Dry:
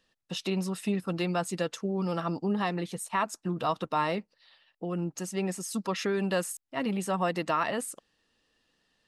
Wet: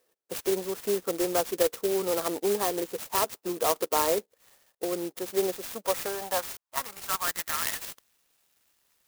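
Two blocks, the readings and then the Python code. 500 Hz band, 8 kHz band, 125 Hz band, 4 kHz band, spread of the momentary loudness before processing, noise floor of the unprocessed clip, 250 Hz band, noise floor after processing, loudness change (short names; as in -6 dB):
+4.5 dB, +6.0 dB, -13.0 dB, +3.5 dB, 6 LU, -77 dBFS, -4.5 dB, -77 dBFS, +2.5 dB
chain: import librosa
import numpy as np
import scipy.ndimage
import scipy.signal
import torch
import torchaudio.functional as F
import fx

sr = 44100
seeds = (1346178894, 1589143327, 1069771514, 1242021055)

y = fx.filter_sweep_highpass(x, sr, from_hz=430.0, to_hz=3100.0, start_s=5.49, end_s=8.23, q=3.2)
y = fx.clock_jitter(y, sr, seeds[0], jitter_ms=0.11)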